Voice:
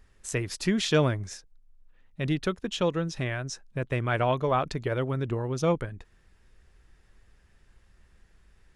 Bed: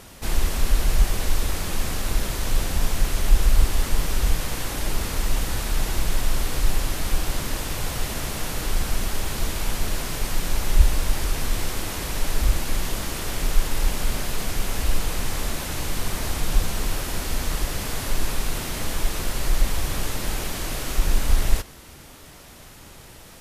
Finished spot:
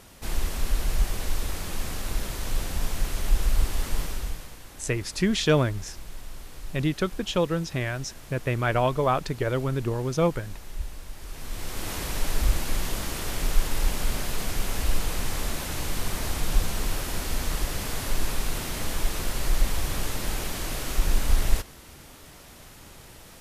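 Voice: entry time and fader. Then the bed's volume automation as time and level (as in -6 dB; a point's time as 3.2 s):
4.55 s, +2.0 dB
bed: 4.01 s -5.5 dB
4.59 s -17.5 dB
11.16 s -17.5 dB
11.91 s -2.5 dB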